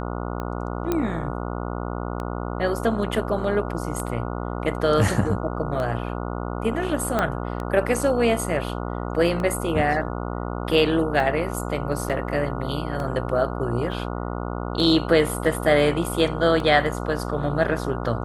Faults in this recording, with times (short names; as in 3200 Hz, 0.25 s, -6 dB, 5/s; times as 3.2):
buzz 60 Hz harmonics 24 -29 dBFS
tick 33 1/3 rpm -18 dBFS
0.92 pop -10 dBFS
7.19 pop -9 dBFS
12.09–12.1 gap 7.4 ms
13.92 gap 2 ms